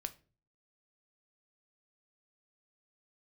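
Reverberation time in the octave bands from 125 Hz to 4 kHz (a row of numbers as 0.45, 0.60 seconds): 0.65, 0.50, 0.45, 0.30, 0.30, 0.25 seconds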